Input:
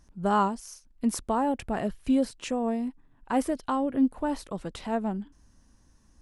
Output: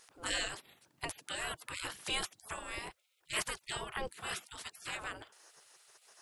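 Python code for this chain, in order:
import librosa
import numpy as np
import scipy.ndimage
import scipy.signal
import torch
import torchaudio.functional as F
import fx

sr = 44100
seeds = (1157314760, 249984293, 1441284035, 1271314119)

y = fx.highpass(x, sr, hz=140.0, slope=6, at=(2.78, 3.77))
y = fx.spec_gate(y, sr, threshold_db=-30, keep='weak')
y = y * librosa.db_to_amplitude(13.0)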